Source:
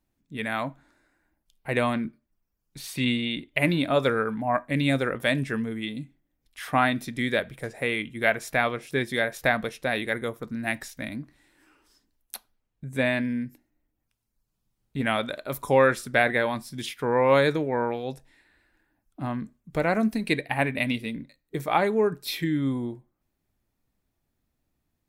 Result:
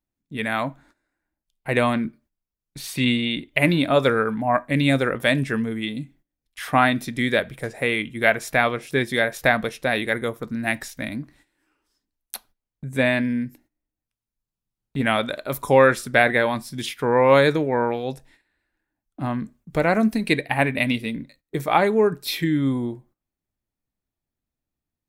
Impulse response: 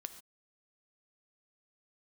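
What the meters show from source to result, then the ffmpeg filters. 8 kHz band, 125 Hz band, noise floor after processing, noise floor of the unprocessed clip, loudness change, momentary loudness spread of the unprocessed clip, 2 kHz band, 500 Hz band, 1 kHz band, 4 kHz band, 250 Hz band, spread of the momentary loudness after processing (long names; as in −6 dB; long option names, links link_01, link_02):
+4.5 dB, +4.5 dB, below −85 dBFS, −79 dBFS, +4.5 dB, 14 LU, +4.5 dB, +4.5 dB, +4.5 dB, +4.5 dB, +4.5 dB, 14 LU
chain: -af "agate=range=-14dB:threshold=-57dB:ratio=16:detection=peak,volume=4.5dB"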